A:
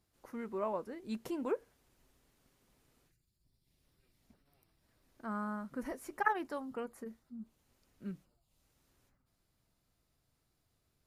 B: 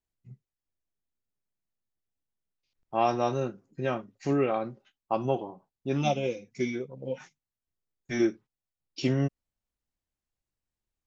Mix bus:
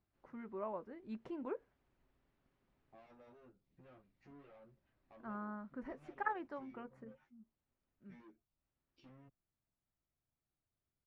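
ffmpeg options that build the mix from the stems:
-filter_complex "[0:a]bandreject=f=470:w=14,volume=-6dB,afade=t=out:st=6.96:d=0.34:silence=0.375837[a];[1:a]asoftclip=type=hard:threshold=-30.5dB,acompressor=threshold=-47dB:ratio=2.5,asplit=2[b][c];[c]adelay=10.3,afreqshift=0.38[d];[b][d]amix=inputs=2:normalize=1,volume=-14.5dB[e];[a][e]amix=inputs=2:normalize=0,lowpass=2.4k"

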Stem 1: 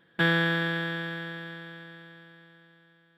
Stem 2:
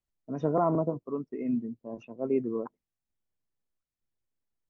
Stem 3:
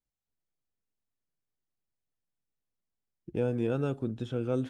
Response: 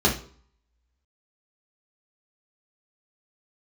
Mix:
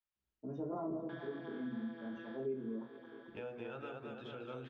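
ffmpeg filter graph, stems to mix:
-filter_complex "[0:a]flanger=delay=17.5:depth=5.9:speed=1.9,adelay=900,volume=-2.5dB[a];[1:a]adelay=150,volume=-14.5dB,asplit=3[b][c][d];[c]volume=-7.5dB[e];[d]volume=-6dB[f];[2:a]acrossover=split=570 4000:gain=0.112 1 0.0708[g][h][i];[g][h][i]amix=inputs=3:normalize=0,bandreject=f=5.5k:w=19,volume=-0.5dB,asplit=3[j][k][l];[k]volume=-20.5dB[m];[l]volume=-4.5dB[n];[a][b]amix=inputs=2:normalize=0,highpass=f=310:w=0.5412,highpass=f=310:w=1.3066,equalizer=f=310:t=q:w=4:g=9,equalizer=f=690:t=q:w=4:g=8,equalizer=f=1k:t=q:w=4:g=4,equalizer=f=1.9k:t=q:w=4:g=-7,equalizer=f=2.7k:t=q:w=4:g=-9,equalizer=f=3.9k:t=q:w=4:g=-6,lowpass=f=4.6k:w=0.5412,lowpass=f=4.6k:w=1.3066,acompressor=threshold=-41dB:ratio=6,volume=0dB[o];[3:a]atrim=start_sample=2205[p];[e][m]amix=inputs=2:normalize=0[q];[q][p]afir=irnorm=-1:irlink=0[r];[f][n]amix=inputs=2:normalize=0,aecho=0:1:223|446|669|892|1115|1338|1561|1784|2007:1|0.58|0.336|0.195|0.113|0.0656|0.0381|0.0221|0.0128[s];[j][o][r][s]amix=inputs=4:normalize=0,acompressor=threshold=-47dB:ratio=2"

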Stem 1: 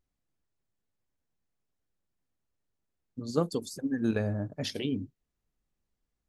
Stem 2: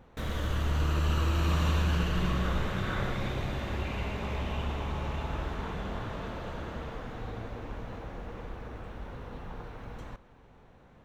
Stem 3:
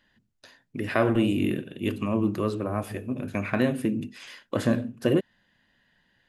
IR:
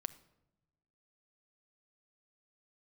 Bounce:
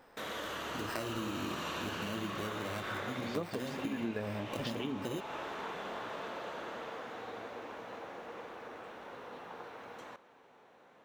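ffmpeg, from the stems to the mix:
-filter_complex "[0:a]highpass=f=210:p=1,lowpass=3.5k,volume=3dB[a];[1:a]highpass=390,volume=0.5dB[b];[2:a]acompressor=threshold=-45dB:ratio=1.5,acrusher=samples=13:mix=1:aa=0.000001,volume=-1dB[c];[a][b][c]amix=inputs=3:normalize=0,acompressor=threshold=-36dB:ratio=3"

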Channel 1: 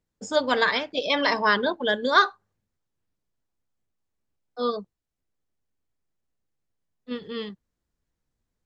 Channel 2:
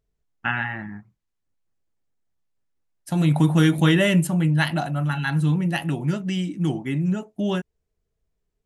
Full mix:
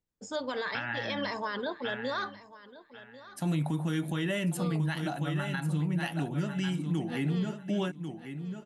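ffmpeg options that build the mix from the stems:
-filter_complex "[0:a]alimiter=limit=-17dB:level=0:latency=1:release=37,volume=-7.5dB,asplit=2[a][b];[b]volume=-17.5dB[c];[1:a]highpass=120,adelay=300,volume=-4.5dB,asplit=2[d][e];[e]volume=-10dB[f];[c][f]amix=inputs=2:normalize=0,aecho=0:1:1094|2188|3282:1|0.19|0.0361[g];[a][d][g]amix=inputs=3:normalize=0,alimiter=limit=-22dB:level=0:latency=1:release=227"

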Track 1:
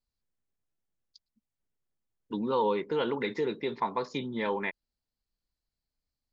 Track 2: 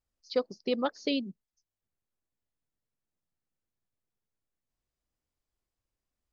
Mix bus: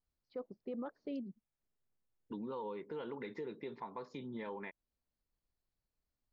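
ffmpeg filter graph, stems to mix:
-filter_complex "[0:a]acompressor=threshold=-40dB:ratio=4,volume=-1.5dB[a];[1:a]lowpass=1.6k,volume=-6.5dB[b];[a][b]amix=inputs=2:normalize=0,highshelf=f=3.4k:g=-11,alimiter=level_in=10dB:limit=-24dB:level=0:latency=1:release=14,volume=-10dB"

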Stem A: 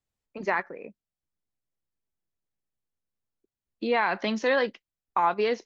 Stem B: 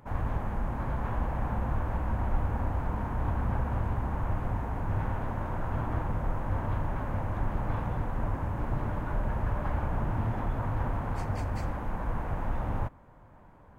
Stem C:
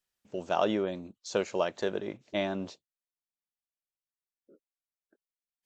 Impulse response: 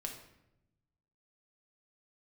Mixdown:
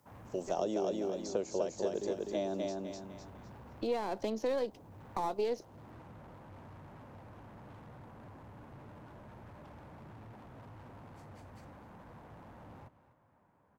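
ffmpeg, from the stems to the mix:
-filter_complex "[0:a]aeval=exprs='if(lt(val(0),0),0.447*val(0),val(0))':c=same,volume=1.5dB[a];[1:a]highpass=120,volume=35.5dB,asoftclip=hard,volume=-35.5dB,volume=-13dB,asplit=2[b][c];[c]volume=-17dB[d];[2:a]aexciter=amount=2.1:drive=6:freq=5.1k,volume=1.5dB,asplit=3[e][f][g];[f]volume=-4dB[h];[g]apad=whole_len=249361[i];[a][i]sidechaincompress=threshold=-45dB:ratio=8:attack=16:release=624[j];[d][h]amix=inputs=2:normalize=0,aecho=0:1:251|502|753|1004:1|0.31|0.0961|0.0298[k];[j][b][e][k]amix=inputs=4:normalize=0,acrossover=split=290|730|4200[l][m][n][o];[l]acompressor=threshold=-47dB:ratio=4[p];[m]acompressor=threshold=-31dB:ratio=4[q];[n]acompressor=threshold=-59dB:ratio=4[r];[o]acompressor=threshold=-51dB:ratio=4[s];[p][q][r][s]amix=inputs=4:normalize=0"

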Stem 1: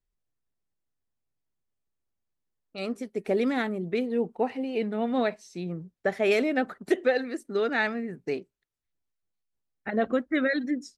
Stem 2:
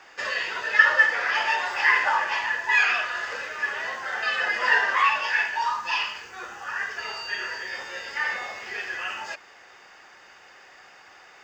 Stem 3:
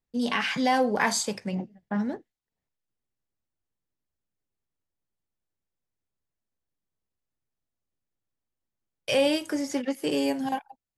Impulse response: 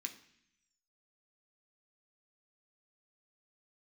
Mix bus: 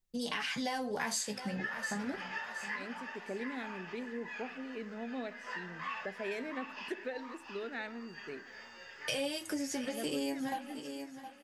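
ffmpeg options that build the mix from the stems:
-filter_complex "[0:a]volume=-16dB,asplit=4[a][b][c][d];[b]volume=-4dB[e];[c]volume=-19dB[f];[1:a]flanger=delay=9.4:depth=1.9:regen=69:speed=0.68:shape=triangular,adelay=850,volume=-14dB,asplit=2[g][h];[h]volume=-7dB[i];[2:a]flanger=delay=5.4:depth=9.1:regen=25:speed=0.34:shape=sinusoidal,highshelf=f=3.4k:g=9.5,volume=-0.5dB,asplit=2[j][k];[k]volume=-17.5dB[l];[d]apad=whole_len=541746[m];[g][m]sidechaincompress=threshold=-52dB:ratio=8:attack=6.1:release=196[n];[3:a]atrim=start_sample=2205[o];[e][o]afir=irnorm=-1:irlink=0[p];[f][i][l]amix=inputs=3:normalize=0,aecho=0:1:715|1430|2145|2860:1|0.3|0.09|0.027[q];[a][n][j][p][q]amix=inputs=5:normalize=0,lowshelf=f=85:g=9,acompressor=threshold=-34dB:ratio=4"

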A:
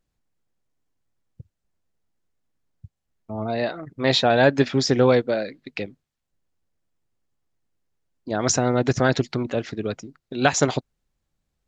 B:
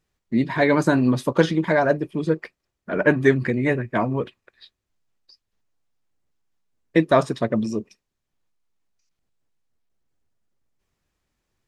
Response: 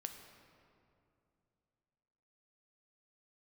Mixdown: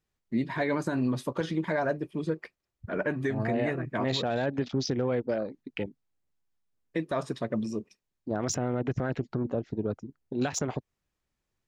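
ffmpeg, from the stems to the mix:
-filter_complex "[0:a]afwtdn=0.02,lowshelf=f=490:g=5,volume=-5.5dB[a];[1:a]volume=-7dB[b];[a][b]amix=inputs=2:normalize=0,alimiter=limit=-18.5dB:level=0:latency=1:release=123"

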